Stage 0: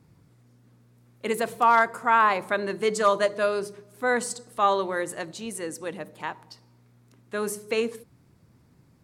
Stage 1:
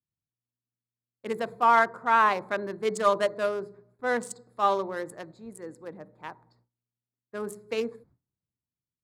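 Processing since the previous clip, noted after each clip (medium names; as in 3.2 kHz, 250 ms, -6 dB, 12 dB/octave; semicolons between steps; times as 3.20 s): local Wiener filter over 15 samples; gate with hold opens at -45 dBFS; three bands expanded up and down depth 40%; trim -3 dB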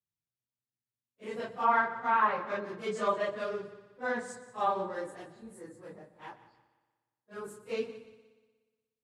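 phase randomisation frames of 100 ms; low-pass that closes with the level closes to 2.6 kHz, closed at -19 dBFS; multi-head delay 60 ms, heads second and third, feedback 47%, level -17 dB; trim -5.5 dB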